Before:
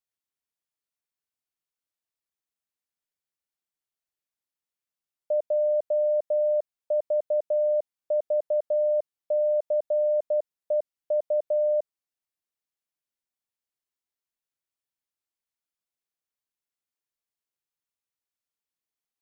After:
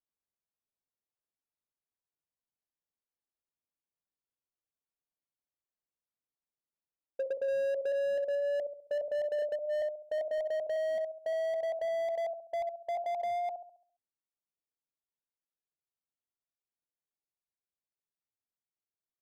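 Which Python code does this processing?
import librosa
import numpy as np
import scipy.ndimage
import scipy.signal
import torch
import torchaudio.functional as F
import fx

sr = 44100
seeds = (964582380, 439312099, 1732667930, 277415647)

p1 = fx.speed_glide(x, sr, from_pct=58, to_pct=142)
p2 = scipy.signal.sosfilt(scipy.signal.bessel(2, 760.0, 'lowpass', norm='mag', fs=sr, output='sos'), p1)
p3 = fx.hum_notches(p2, sr, base_hz=60, count=10)
p4 = p3 + fx.room_flutter(p3, sr, wall_m=11.6, rt60_s=0.54, dry=0)
p5 = fx.slew_limit(p4, sr, full_power_hz=25.0)
y = p5 * librosa.db_to_amplitude(-2.5)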